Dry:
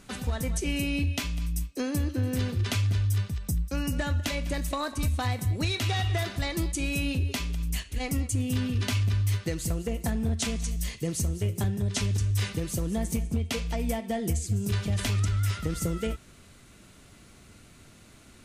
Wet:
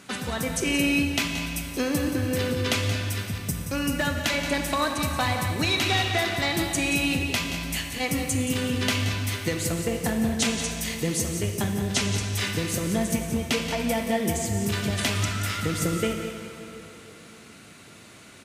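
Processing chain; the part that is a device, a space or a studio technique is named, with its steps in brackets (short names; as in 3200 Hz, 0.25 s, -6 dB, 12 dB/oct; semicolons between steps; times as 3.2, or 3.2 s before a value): PA in a hall (HPF 140 Hz 12 dB/oct; bell 2100 Hz +3.5 dB 2.1 oct; echo 0.176 s -10.5 dB; reverb RT60 3.4 s, pre-delay 34 ms, DRR 4.5 dB); gain +4 dB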